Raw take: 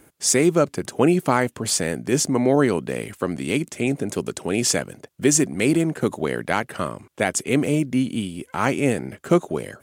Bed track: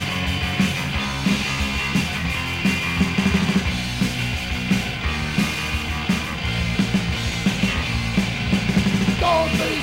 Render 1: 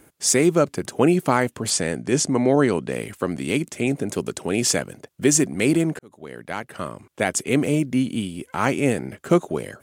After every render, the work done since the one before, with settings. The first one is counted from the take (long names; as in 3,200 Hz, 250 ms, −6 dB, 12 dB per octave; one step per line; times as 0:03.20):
0:01.70–0:02.92: low-pass filter 10,000 Hz 24 dB per octave
0:05.99–0:07.32: fade in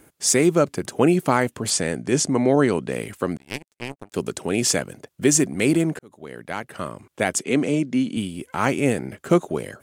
0:03.37–0:04.14: power curve on the samples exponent 3
0:07.39–0:08.17: Chebyshev band-pass filter 190–6,600 Hz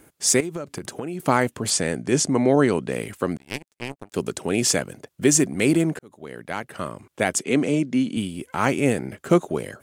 0:00.40–0:01.20: downward compressor 10 to 1, threshold −26 dBFS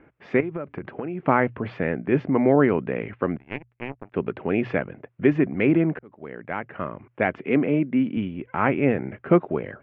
Butterworth low-pass 2,500 Hz 36 dB per octave
mains-hum notches 60/120 Hz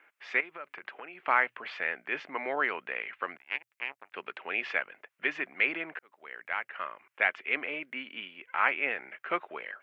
Bessel high-pass filter 1,500 Hz, order 2
high-shelf EQ 2,100 Hz +8 dB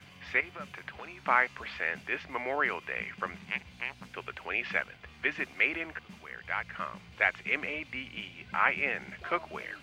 mix in bed track −29.5 dB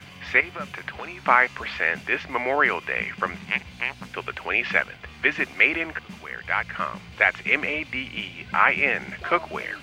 level +9 dB
brickwall limiter −3 dBFS, peak gain reduction 3 dB